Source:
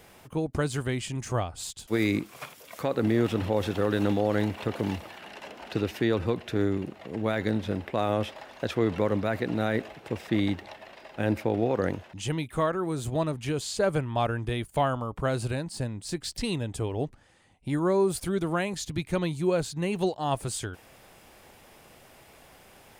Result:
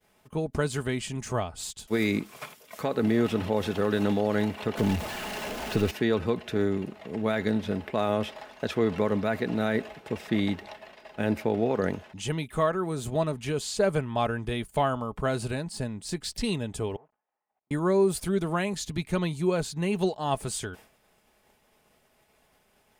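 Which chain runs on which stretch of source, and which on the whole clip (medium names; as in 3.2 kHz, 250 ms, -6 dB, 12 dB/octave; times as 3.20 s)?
4.77–5.91 s: jump at every zero crossing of -33.5 dBFS + bass shelf 120 Hz +9 dB
16.96–17.71 s: one-bit delta coder 16 kbps, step -46 dBFS + compression 12:1, threshold -38 dBFS + band-pass filter 780 Hz, Q 2.4
whole clip: expander -44 dBFS; comb 4.7 ms, depth 34%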